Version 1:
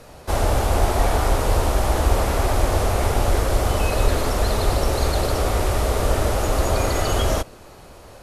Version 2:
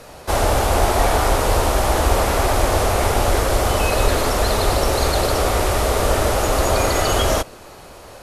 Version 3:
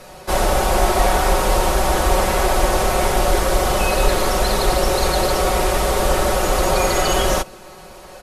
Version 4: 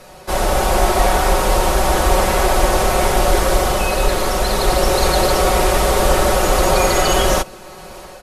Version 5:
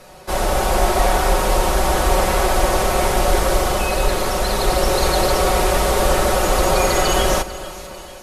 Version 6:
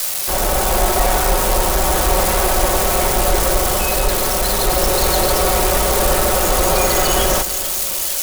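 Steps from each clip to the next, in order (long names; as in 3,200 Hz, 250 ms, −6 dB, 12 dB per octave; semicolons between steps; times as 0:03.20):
low-shelf EQ 290 Hz −6 dB; level +5.5 dB
comb filter 5.4 ms, depth 67%; level −1 dB
automatic gain control; level −1 dB
echo with a time of its own for lows and highs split 2,400 Hz, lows 298 ms, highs 445 ms, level −15.5 dB; level −2 dB
spike at every zero crossing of −12 dBFS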